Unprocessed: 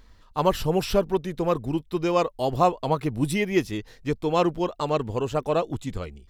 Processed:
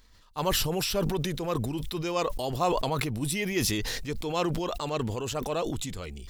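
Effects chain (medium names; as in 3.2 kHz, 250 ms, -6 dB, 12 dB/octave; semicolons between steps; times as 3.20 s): treble shelf 2.5 kHz +11 dB; decay stretcher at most 23 dB/s; trim -8.5 dB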